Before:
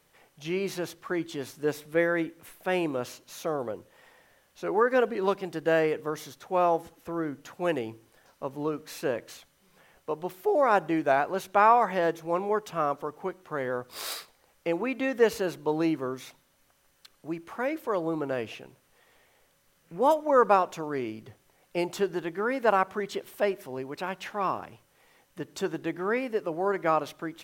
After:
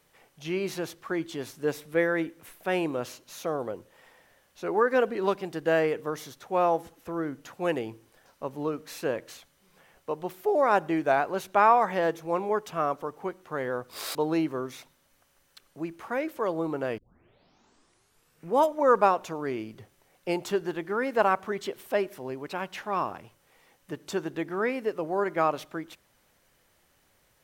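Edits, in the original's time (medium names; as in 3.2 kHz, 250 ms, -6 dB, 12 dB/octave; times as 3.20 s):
14.15–15.63 s: delete
18.46 s: tape start 1.49 s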